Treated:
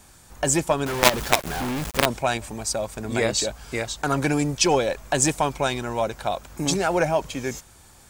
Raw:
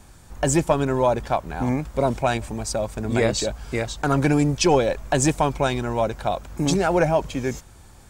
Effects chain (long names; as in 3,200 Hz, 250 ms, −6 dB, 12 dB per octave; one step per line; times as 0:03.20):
spectral tilt +1.5 dB per octave
0:00.86–0:02.06: log-companded quantiser 2 bits
level −1 dB